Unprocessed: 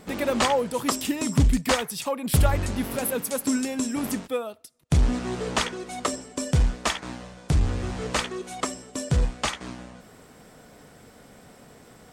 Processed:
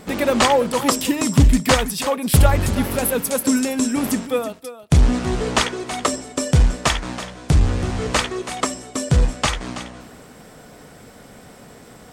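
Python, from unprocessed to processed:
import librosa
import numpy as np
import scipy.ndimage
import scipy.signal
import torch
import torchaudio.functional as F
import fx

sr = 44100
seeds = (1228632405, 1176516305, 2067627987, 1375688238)

y = x + 10.0 ** (-13.0 / 20.0) * np.pad(x, (int(327 * sr / 1000.0), 0))[:len(x)]
y = F.gain(torch.from_numpy(y), 6.5).numpy()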